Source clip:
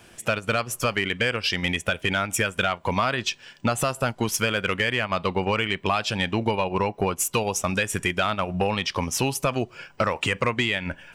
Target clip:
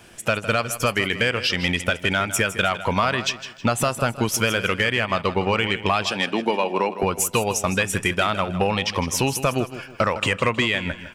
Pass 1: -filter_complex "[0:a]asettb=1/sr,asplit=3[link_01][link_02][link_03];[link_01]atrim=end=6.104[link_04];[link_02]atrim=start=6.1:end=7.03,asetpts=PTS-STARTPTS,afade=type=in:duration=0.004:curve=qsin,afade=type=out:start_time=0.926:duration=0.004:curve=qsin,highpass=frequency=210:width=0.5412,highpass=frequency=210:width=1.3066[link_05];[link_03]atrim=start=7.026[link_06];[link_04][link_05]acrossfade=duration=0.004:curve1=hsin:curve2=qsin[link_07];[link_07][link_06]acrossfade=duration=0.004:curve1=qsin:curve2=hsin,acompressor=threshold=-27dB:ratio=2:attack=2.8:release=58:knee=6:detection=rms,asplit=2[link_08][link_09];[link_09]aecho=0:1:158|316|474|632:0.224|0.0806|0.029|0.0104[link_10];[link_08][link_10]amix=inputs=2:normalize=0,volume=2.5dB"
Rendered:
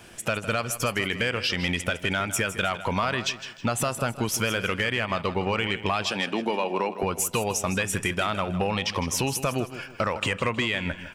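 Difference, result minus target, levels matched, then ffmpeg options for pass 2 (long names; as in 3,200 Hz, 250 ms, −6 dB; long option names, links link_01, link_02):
downward compressor: peak gain reduction +6 dB
-filter_complex "[0:a]asettb=1/sr,asplit=3[link_01][link_02][link_03];[link_01]atrim=end=6.104[link_04];[link_02]atrim=start=6.1:end=7.03,asetpts=PTS-STARTPTS,afade=type=in:duration=0.004:curve=qsin,afade=type=out:start_time=0.926:duration=0.004:curve=qsin,highpass=frequency=210:width=0.5412,highpass=frequency=210:width=1.3066[link_05];[link_03]atrim=start=7.026[link_06];[link_04][link_05]acrossfade=duration=0.004:curve1=hsin:curve2=qsin[link_07];[link_07][link_06]acrossfade=duration=0.004:curve1=qsin:curve2=hsin,asplit=2[link_08][link_09];[link_09]aecho=0:1:158|316|474|632:0.224|0.0806|0.029|0.0104[link_10];[link_08][link_10]amix=inputs=2:normalize=0,volume=2.5dB"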